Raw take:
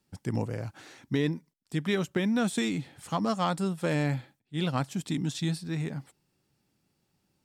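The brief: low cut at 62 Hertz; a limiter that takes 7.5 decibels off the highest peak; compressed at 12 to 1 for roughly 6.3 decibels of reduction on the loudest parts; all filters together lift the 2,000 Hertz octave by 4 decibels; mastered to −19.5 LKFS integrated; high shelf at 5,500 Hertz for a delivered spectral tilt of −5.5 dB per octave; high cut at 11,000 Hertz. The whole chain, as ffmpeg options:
ffmpeg -i in.wav -af "highpass=62,lowpass=11000,equalizer=frequency=2000:width_type=o:gain=5.5,highshelf=frequency=5500:gain=-5,acompressor=threshold=-28dB:ratio=12,volume=18dB,alimiter=limit=-8dB:level=0:latency=1" out.wav

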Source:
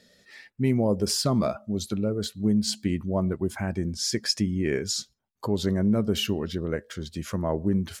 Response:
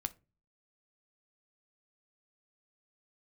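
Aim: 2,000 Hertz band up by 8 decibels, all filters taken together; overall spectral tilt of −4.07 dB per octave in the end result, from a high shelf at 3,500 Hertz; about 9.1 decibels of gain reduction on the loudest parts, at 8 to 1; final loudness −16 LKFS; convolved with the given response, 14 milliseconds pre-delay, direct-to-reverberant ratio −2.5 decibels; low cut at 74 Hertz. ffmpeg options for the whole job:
-filter_complex "[0:a]highpass=74,equalizer=frequency=2000:width_type=o:gain=8,highshelf=frequency=3500:gain=7,acompressor=threshold=-24dB:ratio=8,asplit=2[link_01][link_02];[1:a]atrim=start_sample=2205,adelay=14[link_03];[link_02][link_03]afir=irnorm=-1:irlink=0,volume=3dB[link_04];[link_01][link_04]amix=inputs=2:normalize=0,volume=8.5dB"

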